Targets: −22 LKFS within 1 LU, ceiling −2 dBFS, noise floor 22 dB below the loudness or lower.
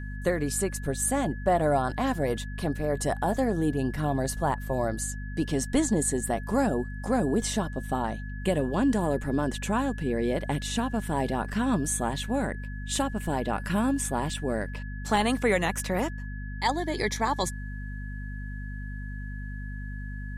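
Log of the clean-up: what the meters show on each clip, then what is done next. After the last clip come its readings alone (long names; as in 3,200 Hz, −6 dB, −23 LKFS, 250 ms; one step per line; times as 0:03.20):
mains hum 50 Hz; hum harmonics up to 250 Hz; level of the hum −33 dBFS; interfering tone 1,700 Hz; level of the tone −44 dBFS; integrated loudness −28.5 LKFS; sample peak −11.0 dBFS; target loudness −22.0 LKFS
→ mains-hum notches 50/100/150/200/250 Hz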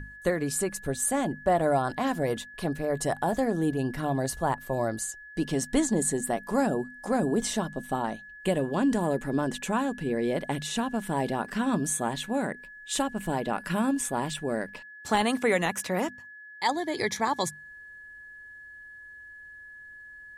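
mains hum none found; interfering tone 1,700 Hz; level of the tone −44 dBFS
→ notch filter 1,700 Hz, Q 30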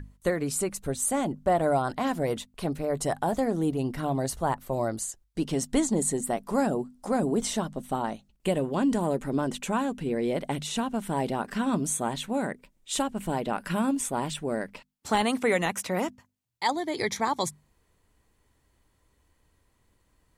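interfering tone none found; integrated loudness −28.5 LKFS; sample peak −11.5 dBFS; target loudness −22.0 LKFS
→ level +6.5 dB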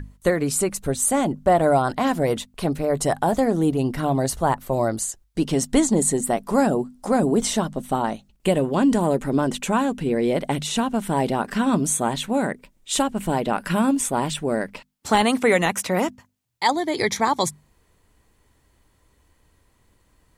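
integrated loudness −22.0 LKFS; sample peak −5.0 dBFS; background noise floor −63 dBFS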